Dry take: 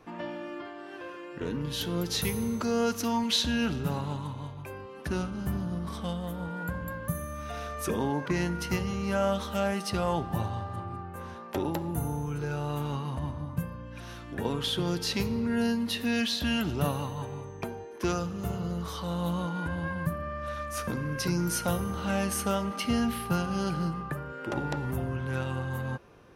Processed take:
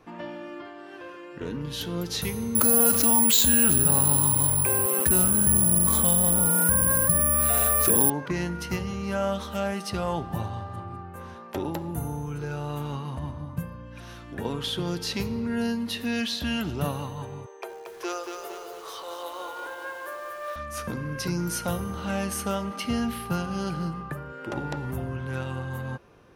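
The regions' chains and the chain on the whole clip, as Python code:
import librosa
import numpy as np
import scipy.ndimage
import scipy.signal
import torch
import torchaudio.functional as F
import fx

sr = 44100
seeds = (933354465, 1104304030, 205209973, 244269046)

y = fx.chain(x, sr, fx.resample_bad(factor=4, down='filtered', up='zero_stuff'),
    fx.env_flatten(amount_pct=70), at=(2.55, 8.1))
y = fx.chain(y, sr, fx.steep_highpass(hz=360.0, slope=48),
    fx.echo_crushed(ms=229, feedback_pct=55, bits=8, wet_db=-5.0), at=(17.46, 20.56))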